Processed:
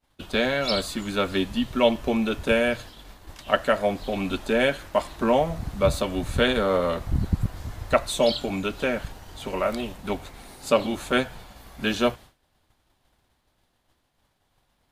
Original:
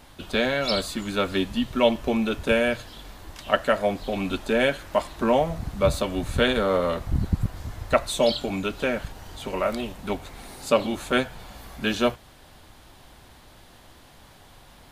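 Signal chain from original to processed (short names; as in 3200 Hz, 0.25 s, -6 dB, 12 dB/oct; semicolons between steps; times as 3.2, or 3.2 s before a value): expander -37 dBFS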